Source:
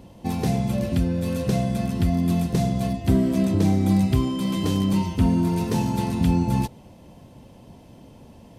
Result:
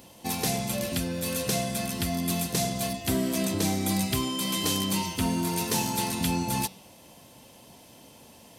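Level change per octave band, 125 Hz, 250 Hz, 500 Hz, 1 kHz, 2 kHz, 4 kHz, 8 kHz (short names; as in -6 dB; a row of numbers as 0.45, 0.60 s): -10.0, -8.0, -3.5, -1.0, +3.5, +6.5, +10.5 dB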